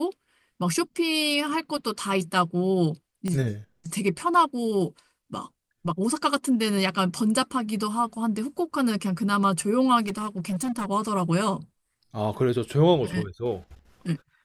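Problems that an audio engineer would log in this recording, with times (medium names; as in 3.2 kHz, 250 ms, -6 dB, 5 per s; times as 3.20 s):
3.28 s: pop -17 dBFS
10.06–10.86 s: clipped -24.5 dBFS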